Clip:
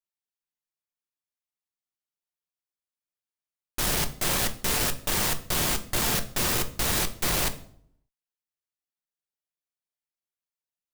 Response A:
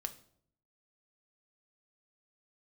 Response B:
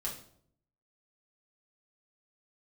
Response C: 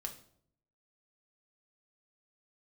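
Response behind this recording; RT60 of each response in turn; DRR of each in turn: A; 0.65, 0.65, 0.65 seconds; 7.0, −4.5, 2.5 decibels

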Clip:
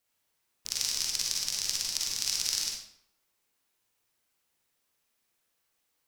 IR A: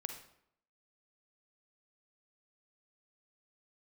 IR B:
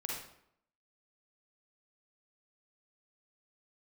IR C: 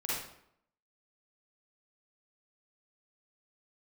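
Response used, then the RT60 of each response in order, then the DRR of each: B; 0.70, 0.70, 0.70 seconds; 5.5, −3.0, −8.0 decibels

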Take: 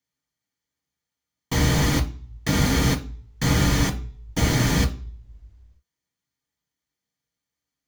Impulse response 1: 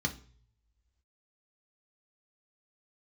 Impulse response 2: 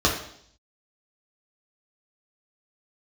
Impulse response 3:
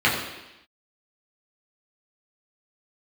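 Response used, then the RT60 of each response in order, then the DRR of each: 1; 0.50, 0.65, 0.95 seconds; 2.0, −3.5, −6.5 decibels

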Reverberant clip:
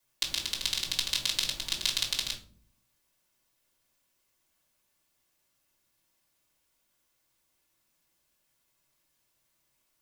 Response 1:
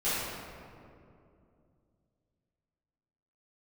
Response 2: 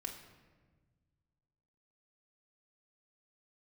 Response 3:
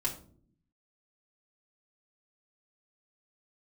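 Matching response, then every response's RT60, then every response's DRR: 3; 2.6, 1.4, 0.55 seconds; −14.0, −0.5, −5.0 decibels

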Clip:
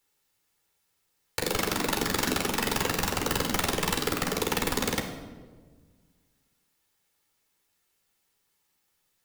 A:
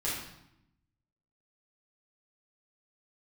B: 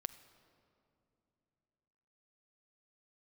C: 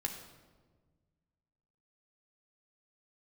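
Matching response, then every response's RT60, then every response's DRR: C; 0.80, 2.9, 1.5 seconds; −8.5, 11.5, 2.5 decibels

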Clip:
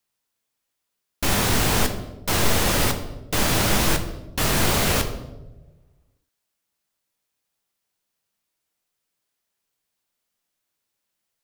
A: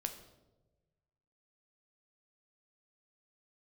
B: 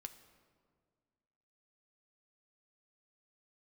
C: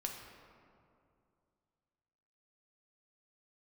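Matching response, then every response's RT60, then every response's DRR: A; 1.2, 1.9, 2.5 seconds; 5.5, 7.5, 1.0 decibels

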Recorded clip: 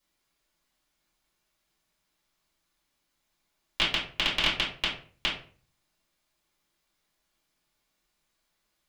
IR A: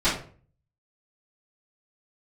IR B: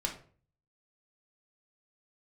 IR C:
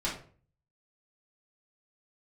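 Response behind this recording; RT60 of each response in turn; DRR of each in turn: C; 0.45, 0.45, 0.45 seconds; −16.0, 0.0, −7.5 decibels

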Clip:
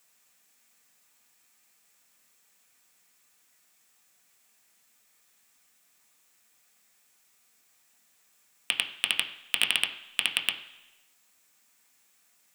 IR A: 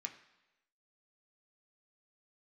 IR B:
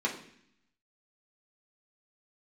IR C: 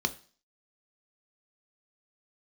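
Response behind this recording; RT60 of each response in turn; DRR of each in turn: A; 1.0, 0.65, 0.40 seconds; 3.0, −3.5, 8.5 decibels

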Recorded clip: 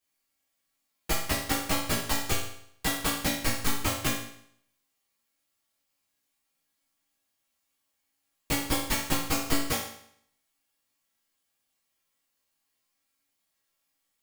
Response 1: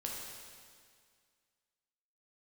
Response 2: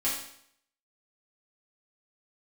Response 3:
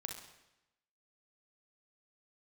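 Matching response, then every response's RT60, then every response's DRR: 2; 2.0, 0.65, 0.90 seconds; −2.5, −9.0, 2.5 decibels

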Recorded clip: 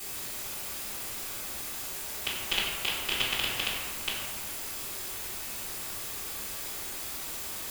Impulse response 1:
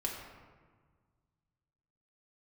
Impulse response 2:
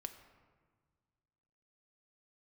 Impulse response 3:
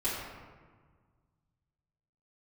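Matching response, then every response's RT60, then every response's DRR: 3; 1.6, 1.6, 1.6 seconds; −2.5, 7.0, −12.0 decibels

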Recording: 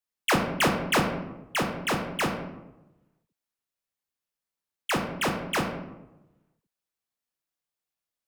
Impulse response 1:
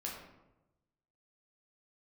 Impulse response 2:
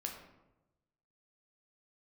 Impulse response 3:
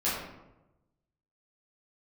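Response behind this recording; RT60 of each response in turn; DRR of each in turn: 2; 1.0, 1.0, 1.0 seconds; −3.5, 1.0, −10.5 decibels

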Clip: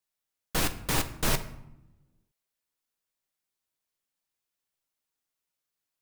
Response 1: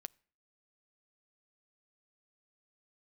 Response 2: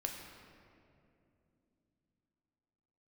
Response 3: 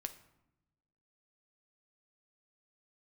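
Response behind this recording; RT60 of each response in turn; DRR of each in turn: 3; 0.50, 2.7, 0.90 seconds; 18.0, 1.5, 7.5 decibels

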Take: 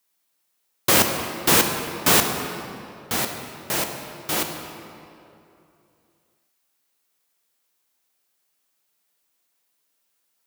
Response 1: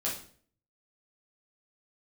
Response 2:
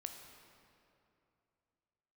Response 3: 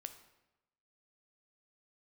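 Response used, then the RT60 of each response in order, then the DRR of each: 2; 0.50, 2.7, 1.0 seconds; −6.0, 4.5, 8.5 decibels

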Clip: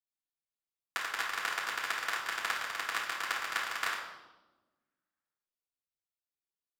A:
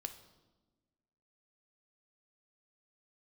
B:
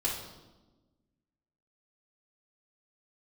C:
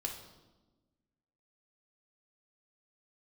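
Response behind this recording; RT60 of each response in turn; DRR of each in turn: B; 1.2, 1.2, 1.2 seconds; 6.5, −7.5, −0.5 decibels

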